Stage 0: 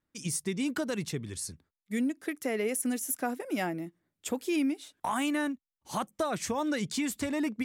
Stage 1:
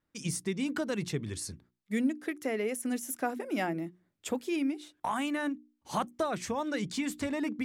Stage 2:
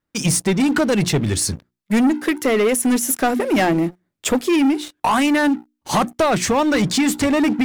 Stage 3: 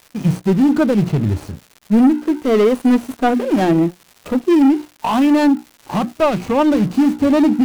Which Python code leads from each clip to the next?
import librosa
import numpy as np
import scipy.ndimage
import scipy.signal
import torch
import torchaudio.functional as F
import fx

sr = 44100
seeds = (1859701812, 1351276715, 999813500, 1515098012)

y1 = fx.high_shelf(x, sr, hz=6600.0, db=-8.0)
y1 = fx.hum_notches(y1, sr, base_hz=60, count=6)
y1 = fx.rider(y1, sr, range_db=3, speed_s=0.5)
y2 = fx.leveller(y1, sr, passes=3)
y2 = y2 * librosa.db_to_amplitude(7.5)
y3 = scipy.ndimage.median_filter(y2, 25, mode='constant')
y3 = fx.hpss(y3, sr, part='percussive', gain_db=-10)
y3 = fx.dmg_crackle(y3, sr, seeds[0], per_s=320.0, level_db=-37.0)
y3 = y3 * librosa.db_to_amplitude(4.5)